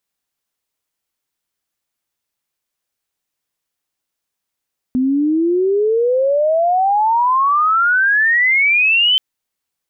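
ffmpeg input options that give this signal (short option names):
-f lavfi -i "aevalsrc='pow(10,(-12.5+2.5*t/4.23)/20)*sin(2*PI*250*4.23/log(3100/250)*(exp(log(3100/250)*t/4.23)-1))':d=4.23:s=44100"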